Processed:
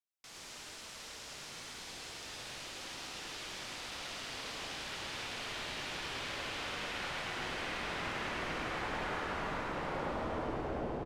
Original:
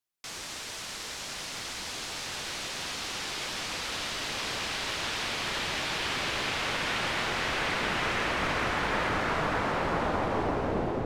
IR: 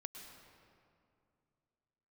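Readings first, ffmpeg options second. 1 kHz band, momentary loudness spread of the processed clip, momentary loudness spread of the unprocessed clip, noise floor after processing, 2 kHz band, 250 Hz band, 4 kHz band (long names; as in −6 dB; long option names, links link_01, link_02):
−9.0 dB, 8 LU, 8 LU, −49 dBFS, −9.5 dB, −8.5 dB, −9.5 dB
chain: -filter_complex "[0:a]aecho=1:1:105:0.668[link_01];[1:a]atrim=start_sample=2205,asetrate=88200,aresample=44100[link_02];[link_01][link_02]afir=irnorm=-1:irlink=0,volume=-1dB"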